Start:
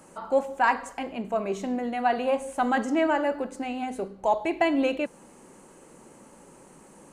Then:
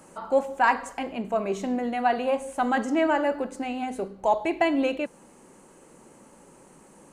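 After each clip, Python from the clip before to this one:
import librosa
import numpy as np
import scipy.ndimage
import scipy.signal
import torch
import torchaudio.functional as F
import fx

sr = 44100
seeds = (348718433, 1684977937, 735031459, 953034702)

y = fx.rider(x, sr, range_db=10, speed_s=2.0)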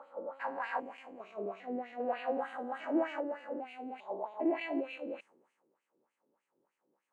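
y = fx.spec_steps(x, sr, hold_ms=400)
y = fx.wah_lfo(y, sr, hz=3.3, low_hz=330.0, high_hz=2600.0, q=2.6)
y = fx.band_widen(y, sr, depth_pct=70)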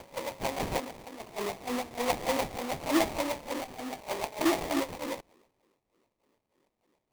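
y = fx.sample_hold(x, sr, seeds[0], rate_hz=1500.0, jitter_pct=20)
y = F.gain(torch.from_numpy(y), 5.0).numpy()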